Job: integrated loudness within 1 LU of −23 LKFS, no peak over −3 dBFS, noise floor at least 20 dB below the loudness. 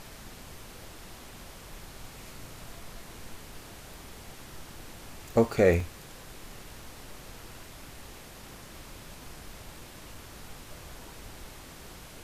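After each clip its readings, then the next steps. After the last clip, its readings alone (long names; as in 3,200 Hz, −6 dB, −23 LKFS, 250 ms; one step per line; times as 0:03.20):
number of dropouts 2; longest dropout 2.7 ms; background noise floor −48 dBFS; target noise floor −57 dBFS; integrated loudness −36.5 LKFS; sample peak −8.5 dBFS; target loudness −23.0 LKFS
→ repair the gap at 0:05.80/0:10.15, 2.7 ms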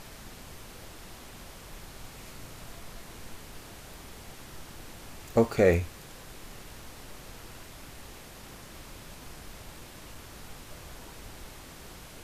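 number of dropouts 0; background noise floor −48 dBFS; target noise floor −57 dBFS
→ noise reduction from a noise print 9 dB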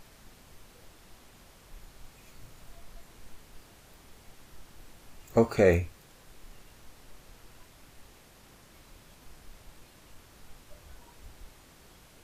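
background noise floor −56 dBFS; integrated loudness −26.0 LKFS; sample peak −8.5 dBFS; target loudness −23.0 LKFS
→ level +3 dB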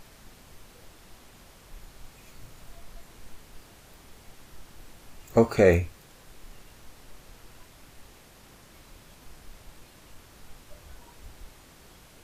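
integrated loudness −23.0 LKFS; sample peak −5.5 dBFS; background noise floor −53 dBFS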